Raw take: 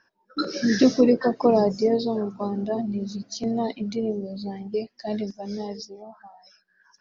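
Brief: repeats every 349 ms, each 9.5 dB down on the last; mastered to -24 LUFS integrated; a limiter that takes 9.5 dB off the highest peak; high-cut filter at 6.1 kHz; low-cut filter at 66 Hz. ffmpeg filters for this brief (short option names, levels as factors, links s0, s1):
-af "highpass=66,lowpass=6100,alimiter=limit=0.168:level=0:latency=1,aecho=1:1:349|698|1047|1396:0.335|0.111|0.0365|0.012,volume=1.5"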